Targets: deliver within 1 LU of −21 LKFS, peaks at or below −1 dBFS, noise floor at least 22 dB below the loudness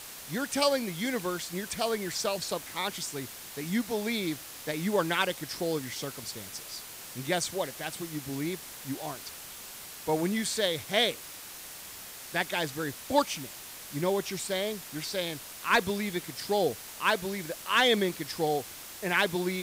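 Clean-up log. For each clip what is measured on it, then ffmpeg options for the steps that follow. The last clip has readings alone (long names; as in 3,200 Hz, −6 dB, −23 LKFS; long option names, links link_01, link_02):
background noise floor −45 dBFS; target noise floor −53 dBFS; integrated loudness −31.0 LKFS; sample peak −12.5 dBFS; target loudness −21.0 LKFS
→ -af "afftdn=noise_reduction=8:noise_floor=-45"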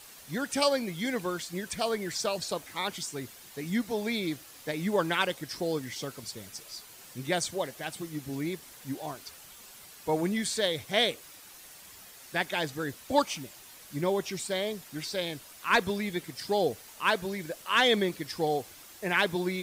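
background noise floor −51 dBFS; target noise floor −53 dBFS
→ -af "afftdn=noise_reduction=6:noise_floor=-51"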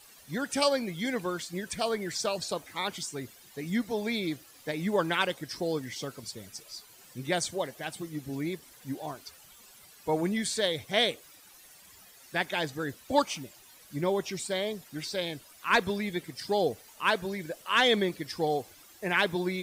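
background noise floor −55 dBFS; integrated loudness −31.0 LKFS; sample peak −12.0 dBFS; target loudness −21.0 LKFS
→ -af "volume=10dB"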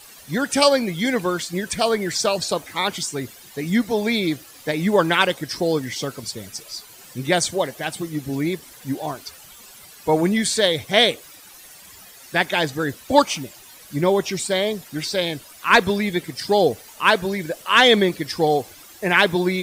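integrated loudness −21.0 LKFS; sample peak −2.0 dBFS; background noise floor −45 dBFS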